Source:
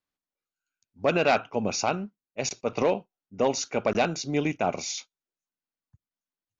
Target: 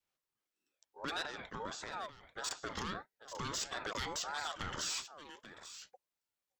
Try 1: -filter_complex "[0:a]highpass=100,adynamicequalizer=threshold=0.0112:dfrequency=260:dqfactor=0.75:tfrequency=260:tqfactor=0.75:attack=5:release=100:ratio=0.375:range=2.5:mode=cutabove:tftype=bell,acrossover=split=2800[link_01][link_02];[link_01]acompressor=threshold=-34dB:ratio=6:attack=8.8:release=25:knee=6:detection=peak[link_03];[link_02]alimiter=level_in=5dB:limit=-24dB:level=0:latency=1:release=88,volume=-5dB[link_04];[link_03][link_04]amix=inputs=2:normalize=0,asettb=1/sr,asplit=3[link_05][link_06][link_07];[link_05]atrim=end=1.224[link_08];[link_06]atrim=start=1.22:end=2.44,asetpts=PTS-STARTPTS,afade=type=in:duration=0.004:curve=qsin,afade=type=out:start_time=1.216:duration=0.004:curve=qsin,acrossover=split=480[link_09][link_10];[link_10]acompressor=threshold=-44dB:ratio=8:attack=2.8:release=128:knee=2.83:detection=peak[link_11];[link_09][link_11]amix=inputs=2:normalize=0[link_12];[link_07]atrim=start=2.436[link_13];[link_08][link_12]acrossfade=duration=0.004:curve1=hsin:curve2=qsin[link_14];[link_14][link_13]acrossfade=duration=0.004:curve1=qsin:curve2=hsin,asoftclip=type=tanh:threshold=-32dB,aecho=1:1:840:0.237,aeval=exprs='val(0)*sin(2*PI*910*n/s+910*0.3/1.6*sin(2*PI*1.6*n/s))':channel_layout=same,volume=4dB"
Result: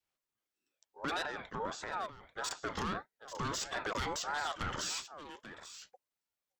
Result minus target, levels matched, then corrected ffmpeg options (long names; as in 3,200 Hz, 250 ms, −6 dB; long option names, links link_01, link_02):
downward compressor: peak gain reduction −7.5 dB
-filter_complex "[0:a]highpass=100,adynamicequalizer=threshold=0.0112:dfrequency=260:dqfactor=0.75:tfrequency=260:tqfactor=0.75:attack=5:release=100:ratio=0.375:range=2.5:mode=cutabove:tftype=bell,acrossover=split=2800[link_01][link_02];[link_01]acompressor=threshold=-43dB:ratio=6:attack=8.8:release=25:knee=6:detection=peak[link_03];[link_02]alimiter=level_in=5dB:limit=-24dB:level=0:latency=1:release=88,volume=-5dB[link_04];[link_03][link_04]amix=inputs=2:normalize=0,asettb=1/sr,asplit=3[link_05][link_06][link_07];[link_05]atrim=end=1.224[link_08];[link_06]atrim=start=1.22:end=2.44,asetpts=PTS-STARTPTS,afade=type=in:duration=0.004:curve=qsin,afade=type=out:start_time=1.216:duration=0.004:curve=qsin,acrossover=split=480[link_09][link_10];[link_10]acompressor=threshold=-44dB:ratio=8:attack=2.8:release=128:knee=2.83:detection=peak[link_11];[link_09][link_11]amix=inputs=2:normalize=0[link_12];[link_07]atrim=start=2.436[link_13];[link_08][link_12]acrossfade=duration=0.004:curve1=hsin:curve2=qsin[link_14];[link_14][link_13]acrossfade=duration=0.004:curve1=qsin:curve2=hsin,asoftclip=type=tanh:threshold=-32dB,aecho=1:1:840:0.237,aeval=exprs='val(0)*sin(2*PI*910*n/s+910*0.3/1.6*sin(2*PI*1.6*n/s))':channel_layout=same,volume=4dB"